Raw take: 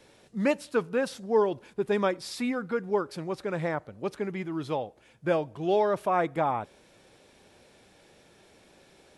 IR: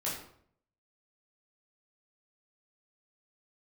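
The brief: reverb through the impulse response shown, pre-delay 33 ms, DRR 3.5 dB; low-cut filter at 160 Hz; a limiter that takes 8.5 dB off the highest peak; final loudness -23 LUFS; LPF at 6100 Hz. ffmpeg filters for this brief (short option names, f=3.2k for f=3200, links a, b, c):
-filter_complex "[0:a]highpass=160,lowpass=6.1k,alimiter=limit=-20.5dB:level=0:latency=1,asplit=2[a][b];[1:a]atrim=start_sample=2205,adelay=33[c];[b][c]afir=irnorm=-1:irlink=0,volume=-7.5dB[d];[a][d]amix=inputs=2:normalize=0,volume=8dB"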